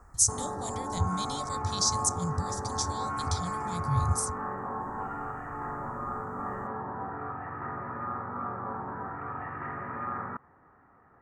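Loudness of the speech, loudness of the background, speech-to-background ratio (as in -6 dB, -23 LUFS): -31.0 LUFS, -35.5 LUFS, 4.5 dB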